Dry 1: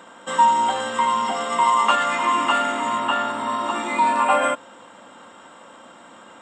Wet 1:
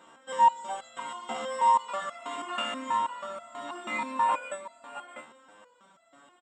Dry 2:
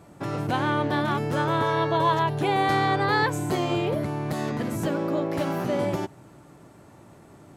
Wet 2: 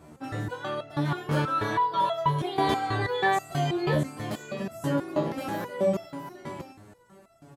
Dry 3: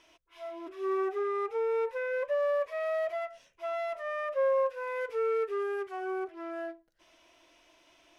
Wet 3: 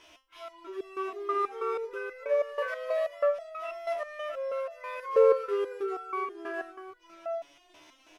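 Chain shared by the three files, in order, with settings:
single-tap delay 663 ms −8.5 dB
step-sequenced resonator 6.2 Hz 76–670 Hz
normalise the peak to −12 dBFS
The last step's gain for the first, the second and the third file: −1.0, +8.5, +15.0 decibels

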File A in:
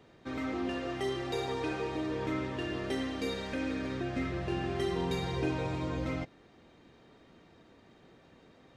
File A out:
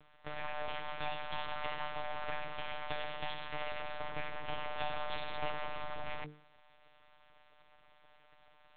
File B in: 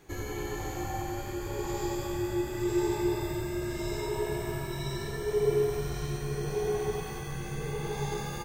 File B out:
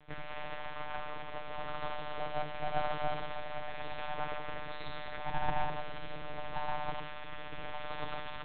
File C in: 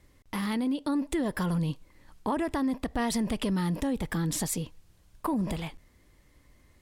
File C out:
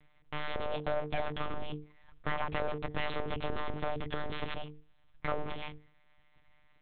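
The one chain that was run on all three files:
full-wave rectification
one-pitch LPC vocoder at 8 kHz 150 Hz
mains-hum notches 50/100/150/200/250/300/350/400/450 Hz
level −2 dB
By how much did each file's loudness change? −6.5, −7.5, −7.5 LU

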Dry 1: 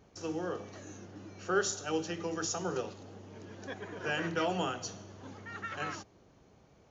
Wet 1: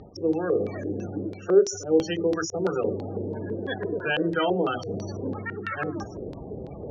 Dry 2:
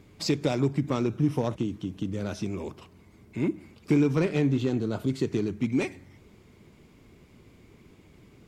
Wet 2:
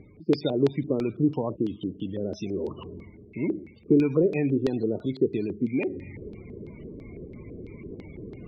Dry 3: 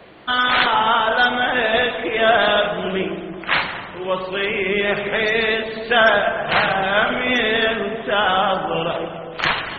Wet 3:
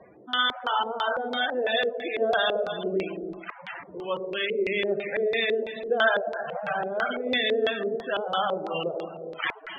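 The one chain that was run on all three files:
dynamic equaliser 100 Hz, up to −5 dB, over −42 dBFS, Q 0.77
reversed playback
upward compression, threshold −30 dBFS
reversed playback
delay with a high-pass on its return 120 ms, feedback 48%, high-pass 2,900 Hz, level −10 dB
spectral peaks only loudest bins 32
auto-filter low-pass square 3 Hz 450–4,200 Hz
loudness normalisation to −27 LKFS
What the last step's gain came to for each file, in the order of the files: +7.0, 0.0, −8.0 decibels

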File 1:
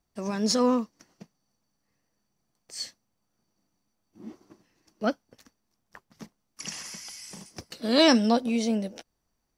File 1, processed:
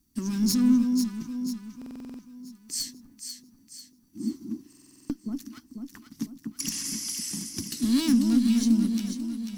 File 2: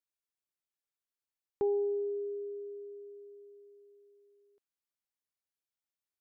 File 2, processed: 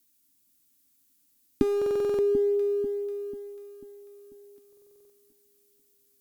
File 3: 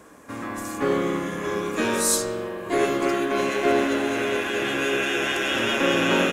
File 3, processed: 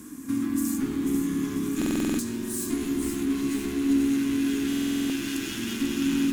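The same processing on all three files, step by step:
asymmetric clip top −31.5 dBFS
downward compressor 2.5 to 1, threshold −37 dBFS
drawn EQ curve 180 Hz 0 dB, 270 Hz +12 dB, 550 Hz −25 dB, 980 Hz −12 dB, 2,300 Hz −7 dB, 14,000 Hz +9 dB
on a send: delay that swaps between a low-pass and a high-pass 246 ms, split 1,000 Hz, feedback 69%, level −4 dB
on the sum: buffer that repeats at 0:01.77/0:04.68, samples 2,048, times 8
loudness normalisation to −27 LKFS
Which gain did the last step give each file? +7.5, +20.0, +5.5 decibels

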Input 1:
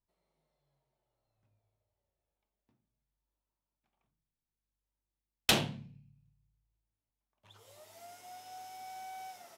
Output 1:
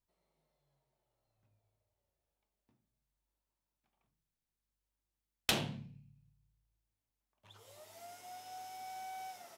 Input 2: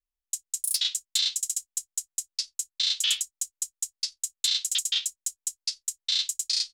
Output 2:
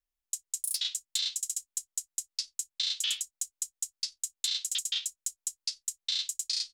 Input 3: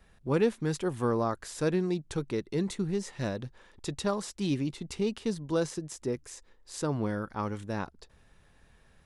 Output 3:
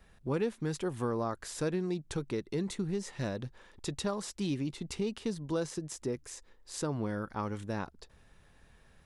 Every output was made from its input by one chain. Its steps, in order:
downward compressor 2 to 1, threshold −32 dBFS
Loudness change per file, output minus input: −6.5, −5.0, −3.5 LU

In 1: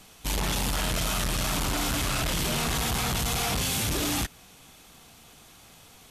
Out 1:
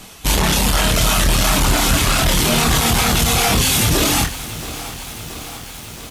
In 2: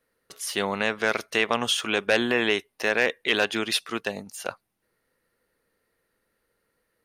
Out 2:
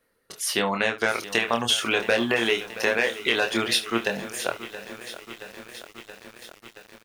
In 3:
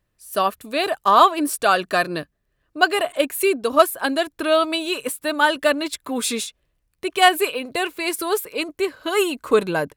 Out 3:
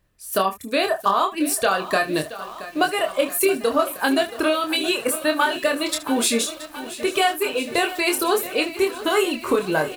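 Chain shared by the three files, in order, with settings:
reverb reduction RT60 0.64 s
downward compressor 12 to 1, threshold −22 dBFS
ambience of single reflections 26 ms −5 dB, 74 ms −16.5 dB
feedback echo at a low word length 675 ms, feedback 80%, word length 7 bits, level −14.5 dB
normalise the peak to −6 dBFS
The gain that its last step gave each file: +12.5, +3.5, +5.0 decibels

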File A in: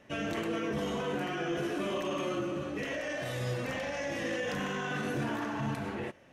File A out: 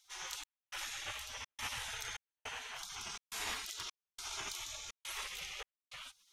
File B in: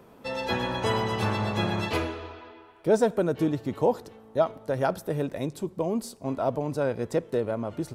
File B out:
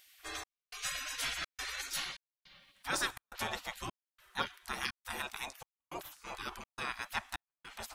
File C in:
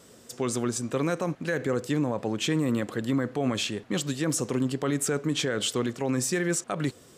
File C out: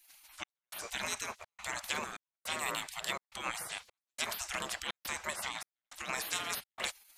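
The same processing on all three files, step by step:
gate on every frequency bin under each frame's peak −25 dB weak
gate pattern "xxx..xxxxx.x" 104 BPM −60 dB
level +8 dB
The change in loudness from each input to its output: −8.5, −11.5, −10.0 LU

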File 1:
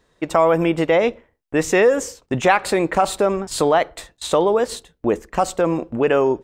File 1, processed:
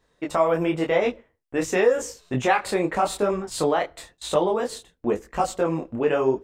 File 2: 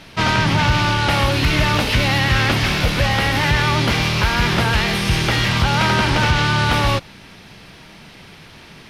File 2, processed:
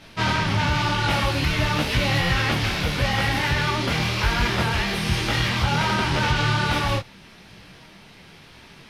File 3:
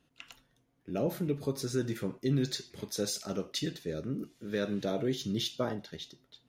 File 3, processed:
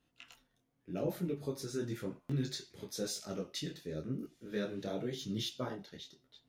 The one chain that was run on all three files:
buffer that repeats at 0:02.19, samples 512, times 8
micro pitch shift up and down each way 32 cents
level −1.5 dB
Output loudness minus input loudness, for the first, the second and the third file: −5.0, −5.0, −5.5 LU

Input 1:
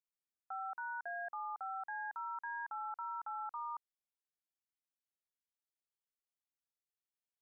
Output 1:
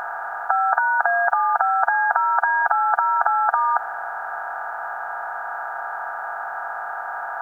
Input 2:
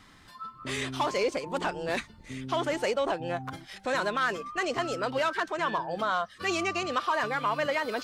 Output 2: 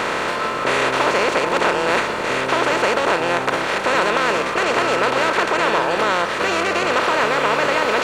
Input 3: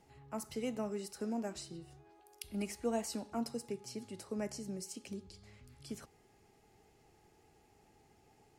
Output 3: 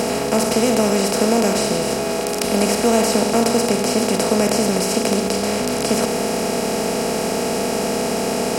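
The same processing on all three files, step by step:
compressor on every frequency bin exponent 0.2
normalise the peak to −3 dBFS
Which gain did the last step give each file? +22.0, +1.0, +14.5 decibels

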